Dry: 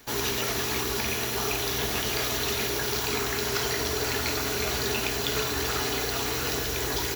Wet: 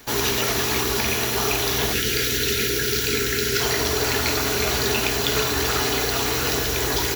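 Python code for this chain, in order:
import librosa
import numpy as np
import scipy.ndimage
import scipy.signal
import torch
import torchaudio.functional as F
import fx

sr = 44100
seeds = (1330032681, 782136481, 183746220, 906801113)

y = fx.spec_box(x, sr, start_s=1.93, length_s=1.68, low_hz=520.0, high_hz=1300.0, gain_db=-17)
y = y * 10.0 ** (6.0 / 20.0)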